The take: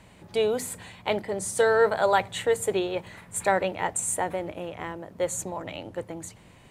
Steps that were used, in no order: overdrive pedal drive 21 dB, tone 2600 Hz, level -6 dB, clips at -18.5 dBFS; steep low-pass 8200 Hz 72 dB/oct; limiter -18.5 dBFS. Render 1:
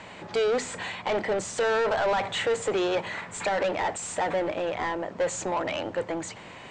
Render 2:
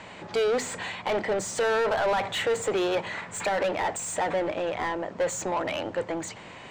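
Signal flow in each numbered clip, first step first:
limiter > overdrive pedal > steep low-pass; steep low-pass > limiter > overdrive pedal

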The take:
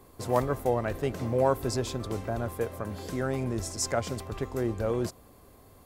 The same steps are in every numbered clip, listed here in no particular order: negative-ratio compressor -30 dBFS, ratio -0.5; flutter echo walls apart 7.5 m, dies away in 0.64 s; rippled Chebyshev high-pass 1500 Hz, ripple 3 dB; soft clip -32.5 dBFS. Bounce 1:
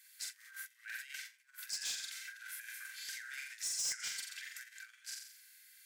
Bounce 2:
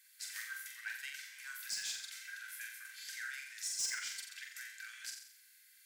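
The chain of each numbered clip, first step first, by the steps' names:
flutter echo > negative-ratio compressor > rippled Chebyshev high-pass > soft clip; rippled Chebyshev high-pass > negative-ratio compressor > soft clip > flutter echo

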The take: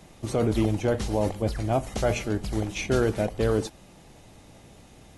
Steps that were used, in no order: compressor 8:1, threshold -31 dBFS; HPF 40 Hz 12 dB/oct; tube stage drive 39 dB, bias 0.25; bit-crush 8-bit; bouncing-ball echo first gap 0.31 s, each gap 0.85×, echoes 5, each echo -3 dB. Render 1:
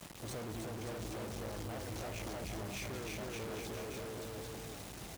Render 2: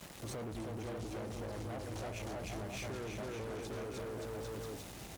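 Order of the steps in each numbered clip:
compressor > bouncing-ball echo > tube stage > bit-crush > HPF; bouncing-ball echo > bit-crush > compressor > tube stage > HPF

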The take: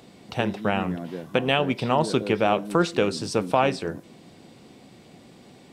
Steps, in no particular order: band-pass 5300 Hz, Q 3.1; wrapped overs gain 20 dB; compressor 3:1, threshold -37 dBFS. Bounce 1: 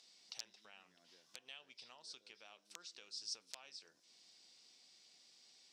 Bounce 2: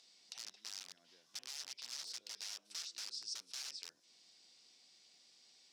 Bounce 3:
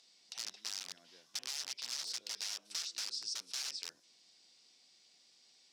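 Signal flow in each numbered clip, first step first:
compressor > wrapped overs > band-pass; wrapped overs > compressor > band-pass; wrapped overs > band-pass > compressor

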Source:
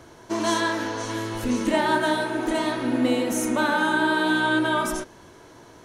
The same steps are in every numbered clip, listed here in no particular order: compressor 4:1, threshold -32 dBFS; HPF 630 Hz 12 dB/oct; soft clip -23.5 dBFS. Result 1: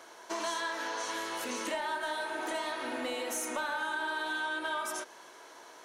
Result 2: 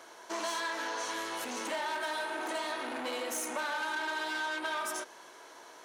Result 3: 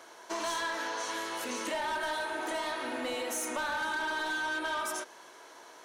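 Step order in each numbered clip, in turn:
HPF > compressor > soft clip; soft clip > HPF > compressor; HPF > soft clip > compressor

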